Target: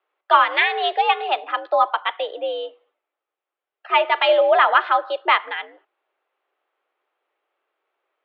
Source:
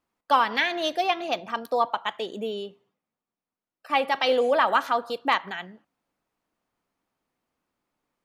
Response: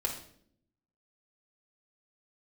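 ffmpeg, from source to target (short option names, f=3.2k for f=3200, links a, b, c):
-af "bandreject=f=890:w=15,highpass=f=330:t=q:w=0.5412,highpass=f=330:t=q:w=1.307,lowpass=f=3.4k:t=q:w=0.5176,lowpass=f=3.4k:t=q:w=0.7071,lowpass=f=3.4k:t=q:w=1.932,afreqshift=85,volume=6.5dB"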